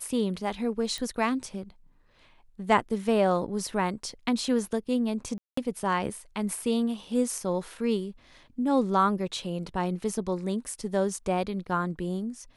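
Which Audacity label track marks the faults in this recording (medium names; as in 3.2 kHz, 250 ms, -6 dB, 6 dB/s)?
0.980000	0.980000	pop
5.380000	5.570000	dropout 194 ms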